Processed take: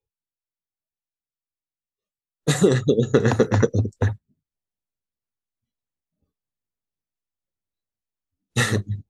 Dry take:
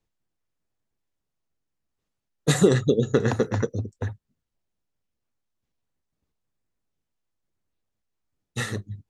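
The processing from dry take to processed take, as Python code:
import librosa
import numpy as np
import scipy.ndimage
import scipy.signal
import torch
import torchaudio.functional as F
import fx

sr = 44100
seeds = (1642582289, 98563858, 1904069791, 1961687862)

y = fx.noise_reduce_blind(x, sr, reduce_db=19)
y = fx.rider(y, sr, range_db=4, speed_s=0.5)
y = y * librosa.db_to_amplitude(4.5)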